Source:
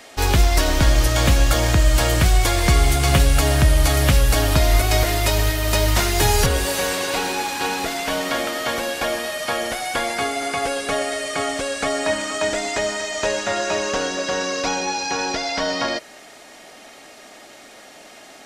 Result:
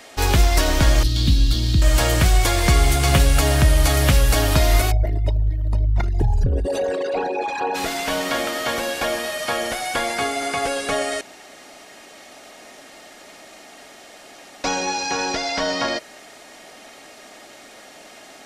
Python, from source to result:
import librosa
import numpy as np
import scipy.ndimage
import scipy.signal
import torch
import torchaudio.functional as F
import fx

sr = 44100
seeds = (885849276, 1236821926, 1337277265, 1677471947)

y = fx.curve_eq(x, sr, hz=(290.0, 560.0, 1500.0, 2300.0, 4100.0, 6600.0), db=(0, -22, -18, -14, 5, -11), at=(1.03, 1.82))
y = fx.envelope_sharpen(y, sr, power=3.0, at=(4.9, 7.74), fade=0.02)
y = fx.edit(y, sr, fx.room_tone_fill(start_s=11.21, length_s=3.43), tone=tone)